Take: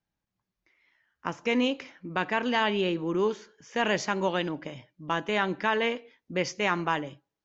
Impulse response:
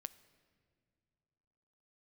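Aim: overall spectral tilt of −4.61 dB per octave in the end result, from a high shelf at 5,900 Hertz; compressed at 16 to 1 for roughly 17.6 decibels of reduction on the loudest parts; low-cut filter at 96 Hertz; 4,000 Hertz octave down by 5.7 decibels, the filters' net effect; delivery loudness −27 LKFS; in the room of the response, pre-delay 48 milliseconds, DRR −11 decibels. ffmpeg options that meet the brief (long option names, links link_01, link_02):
-filter_complex "[0:a]highpass=96,equalizer=frequency=4000:width_type=o:gain=-8,highshelf=frequency=5900:gain=-4,acompressor=threshold=-39dB:ratio=16,asplit=2[link_01][link_02];[1:a]atrim=start_sample=2205,adelay=48[link_03];[link_02][link_03]afir=irnorm=-1:irlink=0,volume=15.5dB[link_04];[link_01][link_04]amix=inputs=2:normalize=0,volume=6.5dB"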